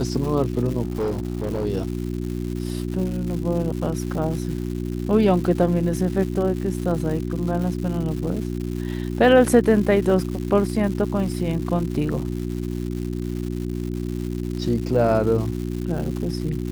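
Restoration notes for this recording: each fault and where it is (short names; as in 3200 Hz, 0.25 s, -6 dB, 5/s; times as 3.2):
crackle 290/s -30 dBFS
hum 60 Hz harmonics 6 -27 dBFS
0.82–1.66 clipped -20 dBFS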